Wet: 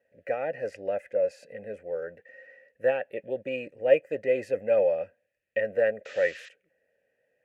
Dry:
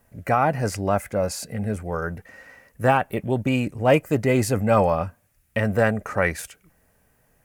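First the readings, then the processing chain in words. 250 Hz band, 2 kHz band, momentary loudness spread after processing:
-18.0 dB, -7.5 dB, 13 LU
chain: painted sound noise, 6.05–6.49 s, 1–7.8 kHz -33 dBFS; vowel filter e; trim +2.5 dB

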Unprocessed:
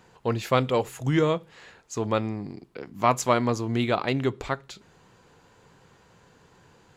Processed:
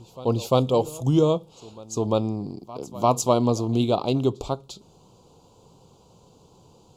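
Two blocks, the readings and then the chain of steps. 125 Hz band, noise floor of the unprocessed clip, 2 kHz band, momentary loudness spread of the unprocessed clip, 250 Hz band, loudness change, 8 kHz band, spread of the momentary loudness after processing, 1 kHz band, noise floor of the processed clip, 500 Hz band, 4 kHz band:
+3.5 dB, -59 dBFS, -13.5 dB, 13 LU, +3.5 dB, +2.5 dB, +3.5 dB, 12 LU, 0.0 dB, -56 dBFS, +3.5 dB, +1.0 dB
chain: Butterworth band-stop 1.8 kHz, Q 0.78; reverse echo 347 ms -20 dB; trim +3.5 dB

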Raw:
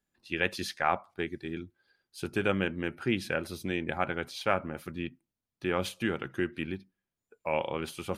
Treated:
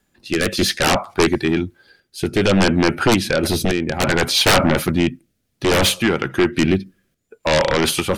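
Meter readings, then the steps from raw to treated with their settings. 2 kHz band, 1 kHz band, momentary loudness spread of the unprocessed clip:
+13.0 dB, +12.0 dB, 10 LU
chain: random-step tremolo, depth 70%; sine folder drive 18 dB, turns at -14 dBFS; rotary cabinet horn 0.6 Hz; trim +5.5 dB

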